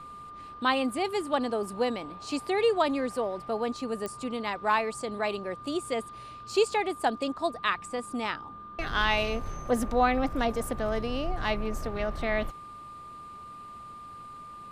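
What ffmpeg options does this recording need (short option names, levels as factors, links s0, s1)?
-af "adeclick=t=4,bandreject=f=1200:w=30"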